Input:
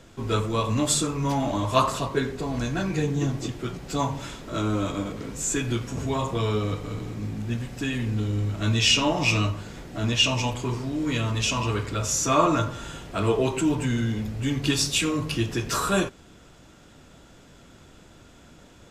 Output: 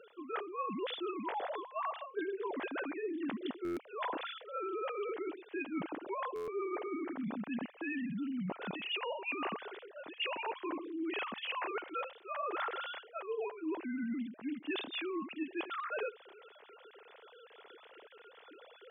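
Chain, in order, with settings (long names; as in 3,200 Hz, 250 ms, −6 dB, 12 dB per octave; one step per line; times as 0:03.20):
three sine waves on the formant tracks
high-pass filter 190 Hz 12 dB per octave
reversed playback
downward compressor 20 to 1, threshold −36 dBFS, peak gain reduction 26 dB
reversed playback
buffer that repeats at 0:03.64/0:06.35, samples 512, times 10
level +1 dB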